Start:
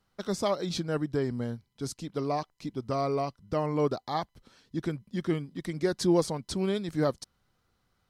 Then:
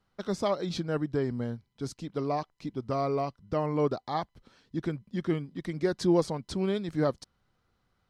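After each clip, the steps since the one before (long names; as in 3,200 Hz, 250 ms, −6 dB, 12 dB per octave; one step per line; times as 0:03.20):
high-shelf EQ 6,700 Hz −11.5 dB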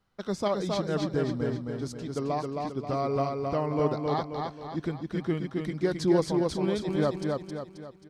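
repeating echo 267 ms, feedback 46%, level −3.5 dB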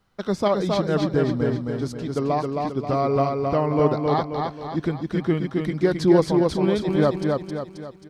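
dynamic equaliser 7,300 Hz, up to −6 dB, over −56 dBFS, Q 0.86
level +7 dB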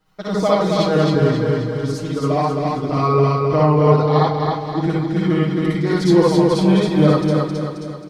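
comb filter 6.4 ms, depth 91%
convolution reverb, pre-delay 54 ms, DRR −4.5 dB
level −2 dB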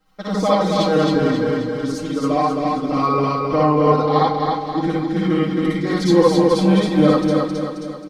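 comb filter 3.8 ms, depth 62%
level −1 dB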